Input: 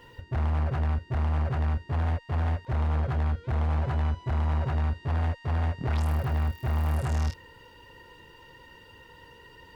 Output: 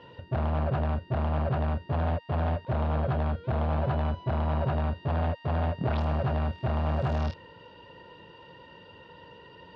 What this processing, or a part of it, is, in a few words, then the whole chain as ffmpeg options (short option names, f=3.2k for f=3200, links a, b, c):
guitar cabinet: -af "highpass=94,equalizer=f=180:t=q:w=4:g=6,equalizer=f=610:t=q:w=4:g=8,equalizer=f=2k:t=q:w=4:g=-7,lowpass=f=4.2k:w=0.5412,lowpass=f=4.2k:w=1.3066,volume=2dB"